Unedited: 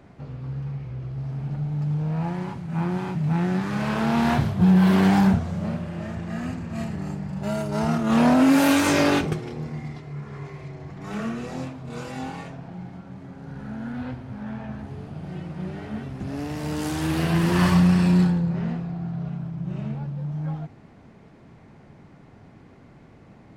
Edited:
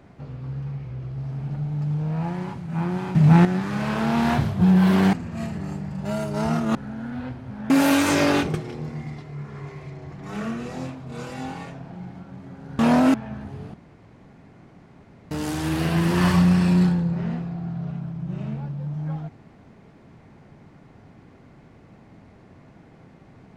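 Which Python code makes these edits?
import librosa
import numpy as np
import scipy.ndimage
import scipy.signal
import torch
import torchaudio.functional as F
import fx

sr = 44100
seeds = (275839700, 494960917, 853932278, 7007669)

y = fx.edit(x, sr, fx.clip_gain(start_s=3.15, length_s=0.3, db=9.5),
    fx.cut(start_s=5.13, length_s=1.38),
    fx.swap(start_s=8.13, length_s=0.35, other_s=13.57, other_length_s=0.95),
    fx.room_tone_fill(start_s=15.12, length_s=1.57), tone=tone)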